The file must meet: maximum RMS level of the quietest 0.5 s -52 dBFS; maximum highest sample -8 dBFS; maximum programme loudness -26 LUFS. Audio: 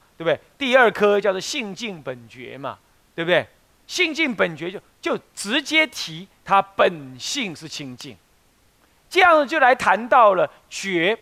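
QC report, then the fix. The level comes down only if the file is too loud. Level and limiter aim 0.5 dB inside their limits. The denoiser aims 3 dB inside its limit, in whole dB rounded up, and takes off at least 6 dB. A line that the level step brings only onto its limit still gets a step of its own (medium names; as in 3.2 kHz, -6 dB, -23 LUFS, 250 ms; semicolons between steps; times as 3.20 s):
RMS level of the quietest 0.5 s -59 dBFS: pass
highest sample -3.5 dBFS: fail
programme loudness -19.5 LUFS: fail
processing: trim -7 dB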